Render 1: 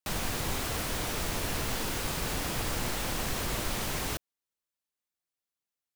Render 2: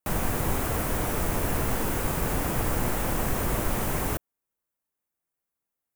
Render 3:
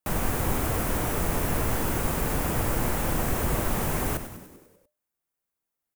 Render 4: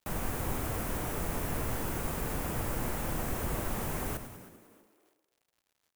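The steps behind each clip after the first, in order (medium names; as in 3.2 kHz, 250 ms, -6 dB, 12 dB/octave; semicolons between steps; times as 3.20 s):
peaking EQ 4.2 kHz -14 dB 1.7 oct; trim +7 dB
frequency-shifting echo 98 ms, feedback 61%, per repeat -86 Hz, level -11 dB
frequency-shifting echo 318 ms, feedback 38%, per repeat +99 Hz, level -19 dB; crackle 130 per s -51 dBFS; trim -7.5 dB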